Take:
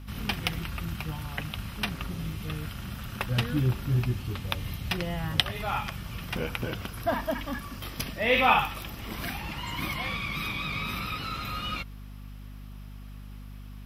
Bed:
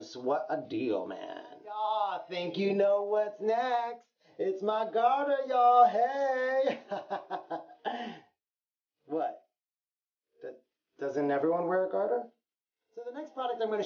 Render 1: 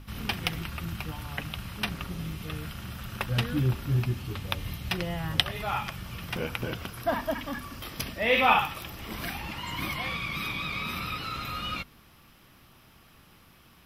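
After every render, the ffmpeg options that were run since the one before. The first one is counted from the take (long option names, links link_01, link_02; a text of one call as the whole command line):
ffmpeg -i in.wav -af "bandreject=frequency=50:width_type=h:width=6,bandreject=frequency=100:width_type=h:width=6,bandreject=frequency=150:width_type=h:width=6,bandreject=frequency=200:width_type=h:width=6,bandreject=frequency=250:width_type=h:width=6" out.wav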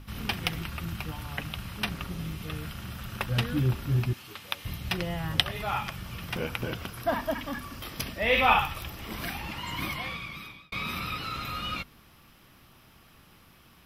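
ffmpeg -i in.wav -filter_complex "[0:a]asettb=1/sr,asplit=3[link_01][link_02][link_03];[link_01]atrim=end=4.134[link_04];[link_02]atrim=start=4.13:end=4.65,asetpts=PTS-STARTPTS,afade=type=in:duration=0.004:curve=qsin,afade=type=out:start_time=0.516:duration=0.004:curve=qsin,highpass=frequency=970:poles=1[link_05];[link_03]atrim=start=4.646[link_06];[link_04][link_05]acrossfade=duration=0.004:curve1=hsin:curve2=qsin[link_07];[link_07][link_06]acrossfade=duration=0.004:curve1=qsin:curve2=hsin,asplit=3[link_08][link_09][link_10];[link_08]afade=type=out:start_time=8.22:duration=0.02[link_11];[link_09]asubboost=boost=3:cutoff=110,afade=type=in:start_time=8.22:duration=0.02,afade=type=out:start_time=8.88:duration=0.02[link_12];[link_10]afade=type=in:start_time=8.88:duration=0.02[link_13];[link_11][link_12][link_13]amix=inputs=3:normalize=0,asplit=2[link_14][link_15];[link_14]atrim=end=10.72,asetpts=PTS-STARTPTS,afade=type=out:start_time=9.83:duration=0.89[link_16];[link_15]atrim=start=10.72,asetpts=PTS-STARTPTS,afade=type=in:duration=0.004:curve=hsin[link_17];[link_16][link_17]concat=n=2:v=0:a=1" out.wav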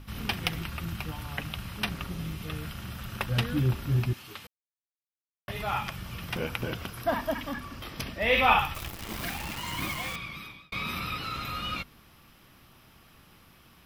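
ffmpeg -i in.wav -filter_complex "[0:a]asettb=1/sr,asplit=3[link_01][link_02][link_03];[link_01]atrim=end=7.534[link_04];[link_02]atrim=start=7.53:end=8.21,asetpts=PTS-STARTPTS,afade=type=in:duration=0.004:curve=qsin,afade=type=out:start_time=0.676:duration=0.004:curve=qsin,highshelf=frequency=6700:gain=-8[link_05];[link_03]atrim=start=8.206[link_06];[link_04][link_05]acrossfade=duration=0.004:curve1=hsin:curve2=qsin[link_07];[link_07][link_06]acrossfade=duration=0.004:curve1=qsin:curve2=hsin,asettb=1/sr,asplit=3[link_08][link_09][link_10];[link_08]atrim=end=8.744[link_11];[link_09]atrim=start=8.74:end=10.16,asetpts=PTS-STARTPTS,afade=type=in:duration=0.004:curve=qsin,afade=type=out:start_time=1.416:duration=0.004:curve=qsin,acrusher=bits=7:dc=4:mix=0:aa=0.000001[link_12];[link_10]atrim=start=10.156[link_13];[link_11][link_12]acrossfade=duration=0.004:curve1=hsin:curve2=qsin[link_14];[link_14][link_13]acrossfade=duration=0.004:curve1=qsin:curve2=hsin,asplit=3[link_15][link_16][link_17];[link_15]atrim=end=4.47,asetpts=PTS-STARTPTS,afade=type=out:start_time=4.466:duration=0.004:curve=hsin[link_18];[link_16]atrim=start=4.47:end=5.48,asetpts=PTS-STARTPTS,volume=0[link_19];[link_17]atrim=start=5.48,asetpts=PTS-STARTPTS,afade=type=in:duration=0.004:curve=hsin[link_20];[link_18][link_19][link_20]concat=n=3:v=0:a=1" out.wav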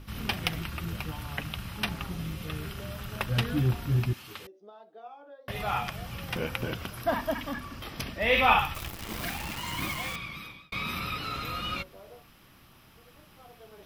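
ffmpeg -i in.wav -i bed.wav -filter_complex "[1:a]volume=-20.5dB[link_01];[0:a][link_01]amix=inputs=2:normalize=0" out.wav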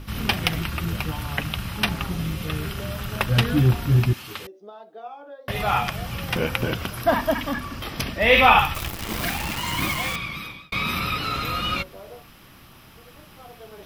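ffmpeg -i in.wav -af "volume=8dB,alimiter=limit=-3dB:level=0:latency=1" out.wav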